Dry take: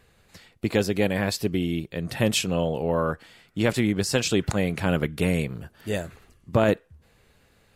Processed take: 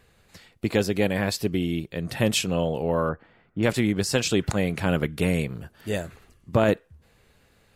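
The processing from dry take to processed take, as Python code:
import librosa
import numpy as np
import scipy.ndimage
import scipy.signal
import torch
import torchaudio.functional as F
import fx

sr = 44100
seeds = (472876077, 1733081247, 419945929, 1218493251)

y = fx.lowpass(x, sr, hz=1400.0, slope=12, at=(3.09, 3.63))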